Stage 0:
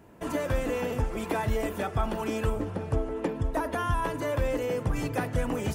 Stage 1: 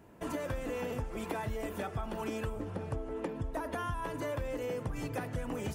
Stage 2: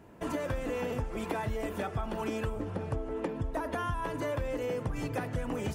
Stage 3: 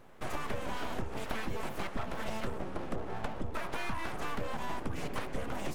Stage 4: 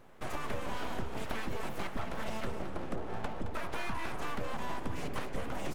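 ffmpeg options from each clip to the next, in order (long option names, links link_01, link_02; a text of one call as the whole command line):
ffmpeg -i in.wav -af "acompressor=threshold=-29dB:ratio=6,volume=-3.5dB" out.wav
ffmpeg -i in.wav -af "highshelf=frequency=8500:gain=-5.5,volume=3dB" out.wav
ffmpeg -i in.wav -af "aeval=exprs='abs(val(0))':channel_layout=same" out.wav
ffmpeg -i in.wav -af "aecho=1:1:218:0.316,volume=-1dB" out.wav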